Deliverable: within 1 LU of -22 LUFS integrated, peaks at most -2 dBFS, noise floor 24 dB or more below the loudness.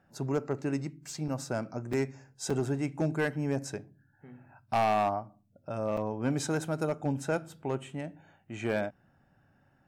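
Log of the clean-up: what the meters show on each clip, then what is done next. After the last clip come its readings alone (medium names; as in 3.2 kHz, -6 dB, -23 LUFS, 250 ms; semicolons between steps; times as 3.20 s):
clipped samples 0.9%; clipping level -21.5 dBFS; dropouts 4; longest dropout 4.6 ms; loudness -32.5 LUFS; peak level -21.5 dBFS; loudness target -22.0 LUFS
-> clip repair -21.5 dBFS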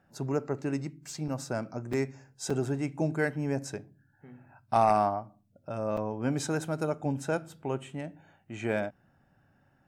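clipped samples 0.0%; dropouts 4; longest dropout 4.6 ms
-> interpolate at 1.28/1.93/2.50/5.97 s, 4.6 ms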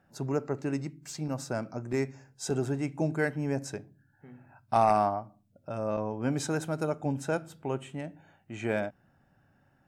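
dropouts 0; loudness -32.0 LUFS; peak level -12.5 dBFS; loudness target -22.0 LUFS
-> trim +10 dB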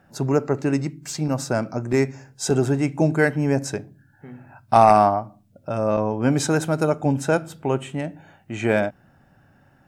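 loudness -22.0 LUFS; peak level -2.5 dBFS; noise floor -58 dBFS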